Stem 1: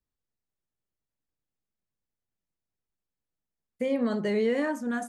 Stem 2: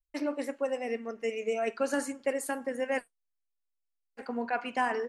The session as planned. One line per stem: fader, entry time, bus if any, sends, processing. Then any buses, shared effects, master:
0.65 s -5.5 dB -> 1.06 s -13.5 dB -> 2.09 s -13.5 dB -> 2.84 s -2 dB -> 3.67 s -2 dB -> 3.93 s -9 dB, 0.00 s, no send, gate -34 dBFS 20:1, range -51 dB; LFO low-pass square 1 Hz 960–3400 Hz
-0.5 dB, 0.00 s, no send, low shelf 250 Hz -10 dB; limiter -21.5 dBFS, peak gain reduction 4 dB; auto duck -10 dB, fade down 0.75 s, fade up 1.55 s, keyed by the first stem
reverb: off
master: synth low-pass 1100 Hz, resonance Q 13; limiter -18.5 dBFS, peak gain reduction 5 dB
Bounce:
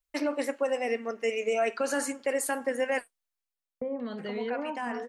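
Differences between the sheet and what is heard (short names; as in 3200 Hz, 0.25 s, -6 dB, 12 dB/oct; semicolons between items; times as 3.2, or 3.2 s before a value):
stem 2 -0.5 dB -> +6.5 dB; master: missing synth low-pass 1100 Hz, resonance Q 13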